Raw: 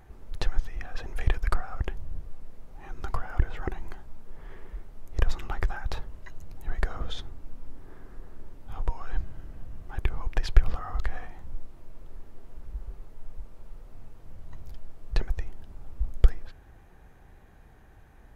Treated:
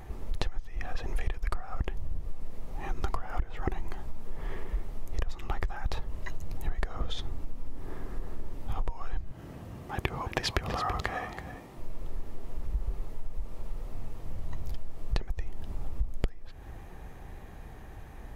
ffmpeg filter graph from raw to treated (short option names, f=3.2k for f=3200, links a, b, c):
-filter_complex "[0:a]asettb=1/sr,asplit=3[a][b][c];[a]atrim=end=9.314[d];[b]atrim=start=9.31:end=11.78,asetpts=PTS-STARTPTS,afade=t=in:d=0.004:c=qsin,afade=t=out:st=2.466:d=0.004:c=qsin,highpass=120,aecho=1:1:330:0.266,atrim=end_sample=108927[e];[c]atrim=start=11.776[f];[d][e]acrossfade=d=0.004:c1=hsin:c2=qsin[g];[g][f]acrossfade=d=0.004:c1=qsin:c2=hsin,equalizer=f=1.5k:w=7.2:g=-7,acompressor=threshold=-32dB:ratio=16,volume=8.5dB"